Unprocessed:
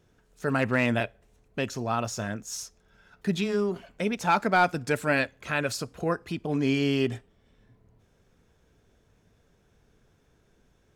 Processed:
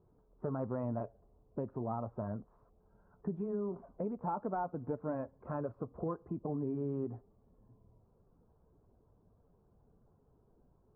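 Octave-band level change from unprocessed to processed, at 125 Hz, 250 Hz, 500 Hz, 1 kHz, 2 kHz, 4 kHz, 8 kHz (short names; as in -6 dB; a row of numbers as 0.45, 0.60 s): -8.5 dB, -10.0 dB, -10.0 dB, -13.0 dB, -30.0 dB, under -40 dB, under -40 dB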